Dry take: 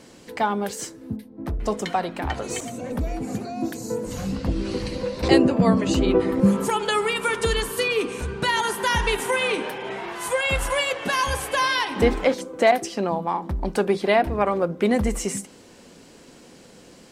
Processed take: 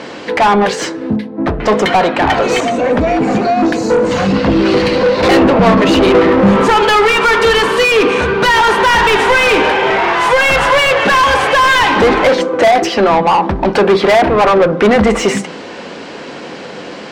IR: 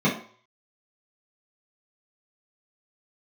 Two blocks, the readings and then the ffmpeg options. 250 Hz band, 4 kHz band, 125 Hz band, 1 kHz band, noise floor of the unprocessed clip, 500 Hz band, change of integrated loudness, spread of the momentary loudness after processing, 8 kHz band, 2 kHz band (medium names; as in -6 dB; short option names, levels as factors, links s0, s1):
+10.5 dB, +12.0 dB, +8.0 dB, +14.5 dB, -48 dBFS, +13.0 dB, +12.5 dB, 10 LU, +6.0 dB, +14.5 dB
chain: -filter_complex "[0:a]lowpass=4600,asplit=2[s0][s1];[s1]highpass=f=720:p=1,volume=35.5,asoftclip=type=tanh:threshold=0.708[s2];[s0][s2]amix=inputs=2:normalize=0,lowpass=f=2200:p=1,volume=0.501,asplit=2[s3][s4];[1:a]atrim=start_sample=2205,asetrate=31311,aresample=44100,adelay=8[s5];[s4][s5]afir=irnorm=-1:irlink=0,volume=0.0188[s6];[s3][s6]amix=inputs=2:normalize=0,volume=1.26"